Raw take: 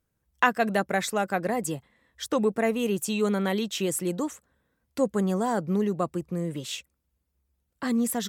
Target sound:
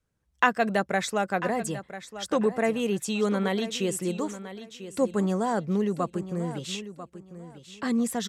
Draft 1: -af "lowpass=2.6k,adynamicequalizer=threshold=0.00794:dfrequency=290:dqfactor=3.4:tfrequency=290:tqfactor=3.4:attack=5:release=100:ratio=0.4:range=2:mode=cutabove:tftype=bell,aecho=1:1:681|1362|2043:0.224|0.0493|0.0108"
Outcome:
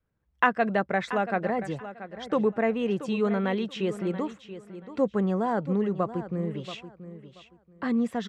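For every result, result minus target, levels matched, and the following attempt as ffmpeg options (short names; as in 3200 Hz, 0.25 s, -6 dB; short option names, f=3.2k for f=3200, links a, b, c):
8000 Hz band -18.0 dB; echo 0.313 s early
-af "lowpass=9k,adynamicequalizer=threshold=0.00794:dfrequency=290:dqfactor=3.4:tfrequency=290:tqfactor=3.4:attack=5:release=100:ratio=0.4:range=2:mode=cutabove:tftype=bell,aecho=1:1:681|1362|2043:0.224|0.0493|0.0108"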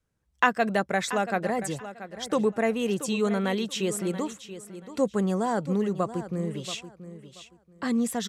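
echo 0.313 s early
-af "lowpass=9k,adynamicequalizer=threshold=0.00794:dfrequency=290:dqfactor=3.4:tfrequency=290:tqfactor=3.4:attack=5:release=100:ratio=0.4:range=2:mode=cutabove:tftype=bell,aecho=1:1:994|1988|2982:0.224|0.0493|0.0108"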